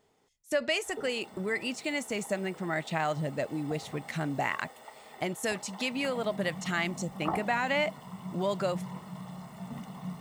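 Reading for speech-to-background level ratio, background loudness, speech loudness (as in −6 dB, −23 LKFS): 11.0 dB, −43.5 LKFS, −32.5 LKFS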